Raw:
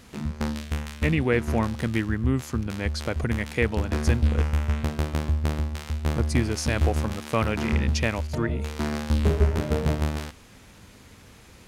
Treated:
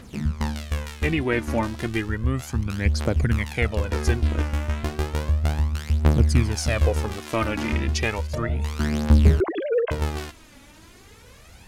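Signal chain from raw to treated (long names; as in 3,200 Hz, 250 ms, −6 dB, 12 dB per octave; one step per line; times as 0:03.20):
0:09.40–0:09.91: three sine waves on the formant tracks
phase shifter 0.33 Hz, delay 3.6 ms, feedback 60%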